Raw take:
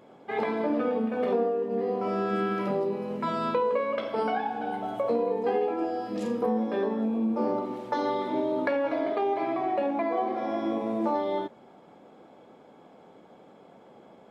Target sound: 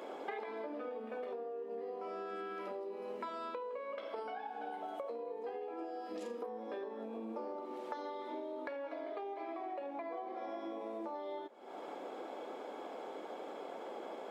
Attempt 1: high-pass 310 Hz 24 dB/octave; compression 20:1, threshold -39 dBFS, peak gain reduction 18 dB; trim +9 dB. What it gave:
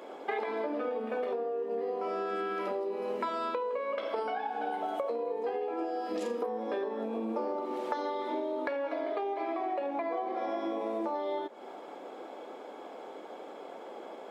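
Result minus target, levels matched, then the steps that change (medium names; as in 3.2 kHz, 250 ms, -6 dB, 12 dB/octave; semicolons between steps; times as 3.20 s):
compression: peak gain reduction -9 dB
change: compression 20:1, threshold -48.5 dBFS, peak gain reduction 27 dB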